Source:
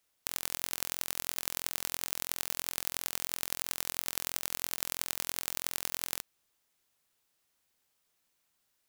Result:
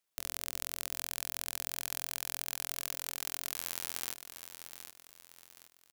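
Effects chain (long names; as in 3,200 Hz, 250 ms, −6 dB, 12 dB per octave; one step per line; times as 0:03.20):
high-pass filter 84 Hz 6 dB per octave
hum removal 134.1 Hz, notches 5
leveller curve on the samples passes 1
tempo change 1.5×
on a send: repeating echo 769 ms, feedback 38%, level −10 dB
on the sum: level −4.5 dB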